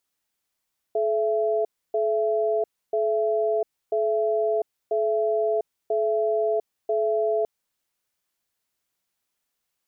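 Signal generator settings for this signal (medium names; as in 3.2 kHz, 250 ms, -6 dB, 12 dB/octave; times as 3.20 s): cadence 430 Hz, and 669 Hz, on 0.70 s, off 0.29 s, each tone -23 dBFS 6.50 s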